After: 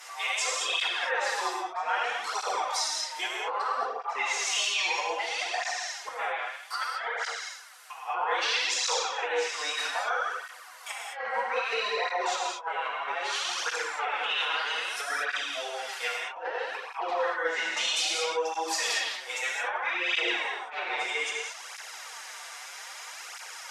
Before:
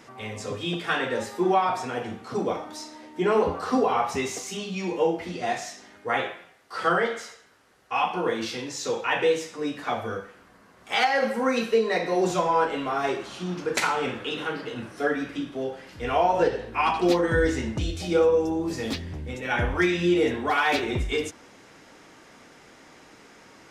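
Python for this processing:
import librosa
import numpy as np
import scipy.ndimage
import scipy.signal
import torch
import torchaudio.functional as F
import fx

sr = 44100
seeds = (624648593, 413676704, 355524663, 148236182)

y = scipy.signal.sosfilt(scipy.signal.butter(4, 770.0, 'highpass', fs=sr, output='sos'), x)
y = fx.env_lowpass_down(y, sr, base_hz=1400.0, full_db=-27.0)
y = fx.high_shelf(y, sr, hz=5800.0, db=11.5)
y = fx.over_compress(y, sr, threshold_db=-35.0, ratio=-0.5)
y = fx.rev_gated(y, sr, seeds[0], gate_ms=250, shape='flat', drr_db=-2.5)
y = fx.flanger_cancel(y, sr, hz=0.62, depth_ms=7.7)
y = F.gain(torch.from_numpy(y), 4.0).numpy()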